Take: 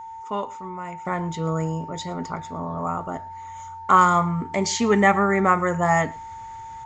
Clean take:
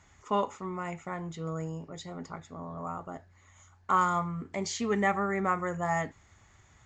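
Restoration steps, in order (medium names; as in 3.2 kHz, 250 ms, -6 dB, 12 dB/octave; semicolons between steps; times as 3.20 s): band-stop 900 Hz, Q 30; inverse comb 111 ms -23.5 dB; gain correction -10 dB, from 1.05 s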